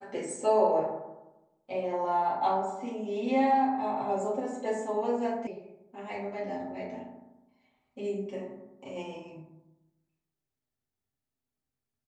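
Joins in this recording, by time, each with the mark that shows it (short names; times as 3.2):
5.47 sound cut off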